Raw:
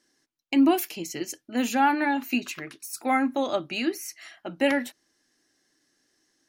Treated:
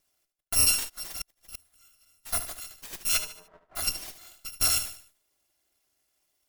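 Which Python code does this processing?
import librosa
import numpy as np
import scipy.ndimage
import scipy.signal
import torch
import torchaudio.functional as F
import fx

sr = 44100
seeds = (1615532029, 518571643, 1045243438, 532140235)

y = fx.bit_reversed(x, sr, seeds[0], block=256)
y = fx.cheby1_bandpass(y, sr, low_hz=380.0, high_hz=980.0, order=3, at=(3.17, 3.75), fade=0.02)
y = np.maximum(y, 0.0)
y = fx.cheby_harmonics(y, sr, harmonics=(6,), levels_db=(-26,), full_scale_db=-8.5)
y = fx.echo_feedback(y, sr, ms=74, feedback_pct=40, wet_db=-11.0)
y = fx.gate_flip(y, sr, shuts_db=-21.0, range_db=-36, at=(0.88, 2.25), fade=0.02)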